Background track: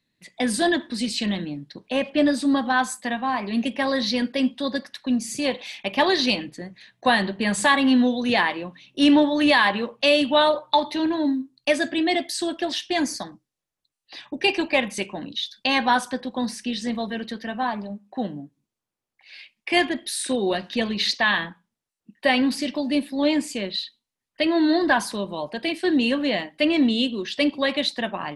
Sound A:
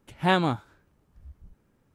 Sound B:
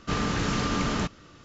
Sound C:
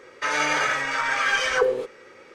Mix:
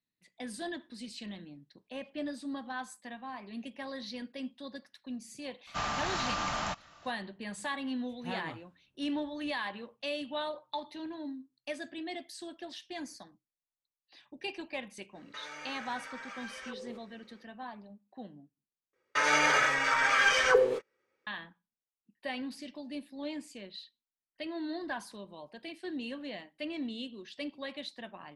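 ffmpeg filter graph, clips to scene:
-filter_complex "[3:a]asplit=2[a][b];[0:a]volume=-18dB[c];[2:a]lowshelf=f=540:t=q:w=3:g=-9[d];[1:a]flanger=delay=18:depth=5:speed=1.8[e];[a]acompressor=threshold=-26dB:ratio=6:attack=3.2:release=140:knee=1:detection=peak[f];[b]agate=range=-28dB:threshold=-39dB:ratio=16:release=100:detection=peak[g];[c]asplit=2[h][i];[h]atrim=end=18.934[j];[g]atrim=end=2.34,asetpts=PTS-STARTPTS,volume=-2.5dB[k];[i]atrim=start=21.266[l];[d]atrim=end=1.44,asetpts=PTS-STARTPTS,volume=-4.5dB,afade=t=in:d=0.004:c=hsin,afade=t=out:st=1.436:d=0.004:c=hsin,adelay=5670[m];[e]atrim=end=1.94,asetpts=PTS-STARTPTS,volume=-16dB,afade=t=in:d=0.004:c=hsin,afade=t=out:st=1.936:d=0.004:c=hsin,adelay=8010[n];[f]atrim=end=2.34,asetpts=PTS-STARTPTS,volume=-15.5dB,afade=t=in:d=0.05,afade=t=out:st=2.29:d=0.05,adelay=15120[o];[j][k]acrossfade=d=0.004:c1=hsin:c2=hsin[p];[p][l]acrossfade=d=0.004:c1=hsin:c2=hsin[q];[q][m][n][o]amix=inputs=4:normalize=0"

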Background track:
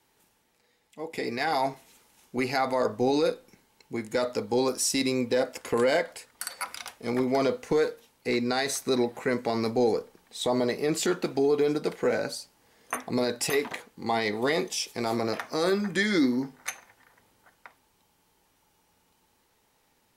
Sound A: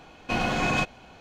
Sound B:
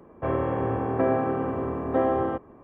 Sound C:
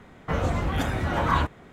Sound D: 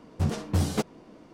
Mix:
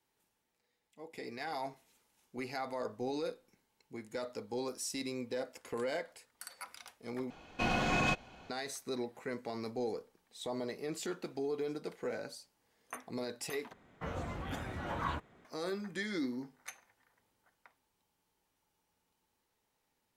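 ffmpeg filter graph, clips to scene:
-filter_complex "[0:a]volume=-13dB[a];[1:a]acontrast=75[b];[3:a]lowshelf=f=76:g=-7.5[c];[a]asplit=3[d][e][f];[d]atrim=end=7.304[g];[b]atrim=end=1.2,asetpts=PTS-STARTPTS,volume=-12.5dB[h];[e]atrim=start=8.496:end=13.734[i];[c]atrim=end=1.72,asetpts=PTS-STARTPTS,volume=-13dB[j];[f]atrim=start=15.446[k];[g][h]acrossfade=d=0.004:c1=hsin:c2=hsin[l];[l][i]acrossfade=d=0.004:c1=hsin:c2=hsin[m];[m][j]acrossfade=d=0.004:c1=hsin:c2=hsin[n];[n][k]acrossfade=d=0.004:c1=hsin:c2=hsin"

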